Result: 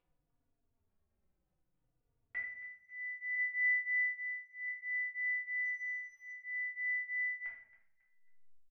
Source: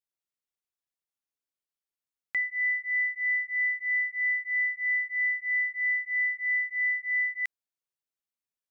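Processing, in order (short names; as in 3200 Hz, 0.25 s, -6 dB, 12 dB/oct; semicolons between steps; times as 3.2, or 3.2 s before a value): gate -38 dBFS, range -28 dB; treble ducked by the level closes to 1600 Hz, closed at -29 dBFS; 3.35–4.68 high shelf 2100 Hz +10.5 dB; comb 1.3 ms, depth 34%; 5.65–6.28 sample leveller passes 3; upward compressor, threshold -35 dBFS; backlash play -58.5 dBFS; air absorption 340 m; feedback echo 0.273 s, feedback 31%, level -17 dB; shoebox room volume 110 m³, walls mixed, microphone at 1.7 m; endless flanger 3.5 ms -0.59 Hz; gain -5 dB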